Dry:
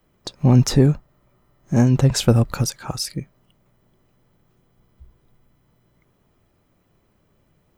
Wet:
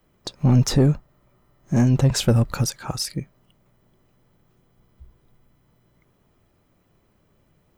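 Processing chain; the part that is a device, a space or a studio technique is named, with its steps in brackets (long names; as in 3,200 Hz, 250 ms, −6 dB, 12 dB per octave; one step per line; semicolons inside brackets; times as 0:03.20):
saturation between pre-emphasis and de-emphasis (high-shelf EQ 4,300 Hz +9.5 dB; soft clipping −8.5 dBFS, distortion −15 dB; high-shelf EQ 4,300 Hz −9.5 dB)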